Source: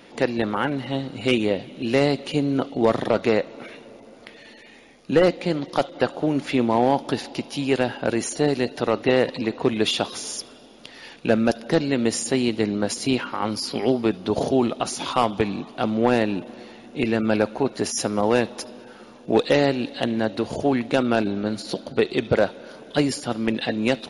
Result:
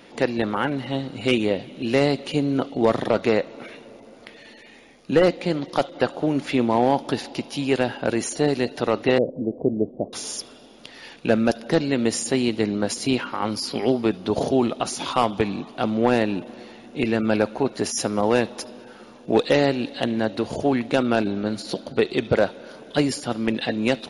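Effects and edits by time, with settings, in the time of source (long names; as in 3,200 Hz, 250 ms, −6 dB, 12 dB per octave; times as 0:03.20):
0:09.18–0:10.13: elliptic low-pass filter 640 Hz, stop band 70 dB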